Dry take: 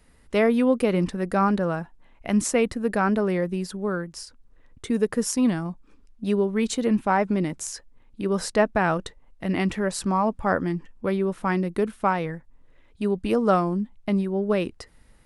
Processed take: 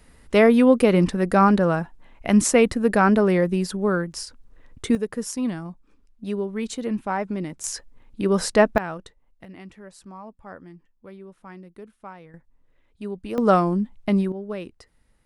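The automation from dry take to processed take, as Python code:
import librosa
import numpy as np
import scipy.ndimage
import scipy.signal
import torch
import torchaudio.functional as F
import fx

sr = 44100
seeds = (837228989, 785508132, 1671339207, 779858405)

y = fx.gain(x, sr, db=fx.steps((0.0, 5.0), (4.95, -4.5), (7.64, 4.0), (8.78, -9.0), (9.45, -18.0), (12.34, -7.5), (13.38, 3.0), (14.32, -8.5)))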